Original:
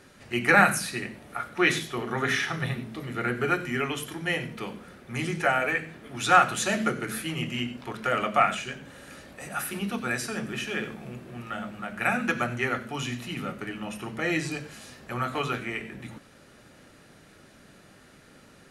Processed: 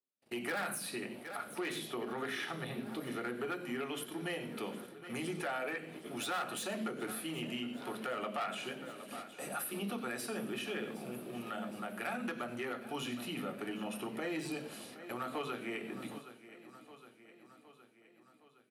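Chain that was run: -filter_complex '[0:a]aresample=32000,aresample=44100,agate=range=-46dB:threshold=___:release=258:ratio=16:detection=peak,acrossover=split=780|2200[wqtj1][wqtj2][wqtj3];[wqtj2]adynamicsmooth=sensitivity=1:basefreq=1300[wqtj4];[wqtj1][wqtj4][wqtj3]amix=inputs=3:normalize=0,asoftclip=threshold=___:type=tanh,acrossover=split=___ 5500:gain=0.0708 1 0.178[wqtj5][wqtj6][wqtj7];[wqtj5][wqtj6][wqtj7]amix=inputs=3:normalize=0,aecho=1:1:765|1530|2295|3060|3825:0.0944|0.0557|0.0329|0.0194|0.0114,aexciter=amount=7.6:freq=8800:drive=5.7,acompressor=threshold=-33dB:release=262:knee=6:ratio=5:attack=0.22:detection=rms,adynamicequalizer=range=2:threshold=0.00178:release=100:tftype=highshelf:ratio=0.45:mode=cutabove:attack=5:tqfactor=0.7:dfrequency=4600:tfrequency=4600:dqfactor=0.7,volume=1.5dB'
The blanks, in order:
-45dB, -22dB, 190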